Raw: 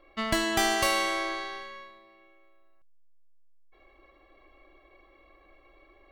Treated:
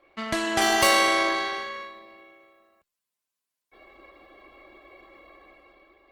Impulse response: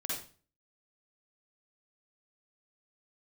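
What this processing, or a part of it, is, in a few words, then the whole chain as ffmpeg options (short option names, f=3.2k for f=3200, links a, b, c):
video call: -af "highpass=f=120:p=1,dynaudnorm=f=130:g=11:m=8.5dB" -ar 48000 -c:a libopus -b:a 16k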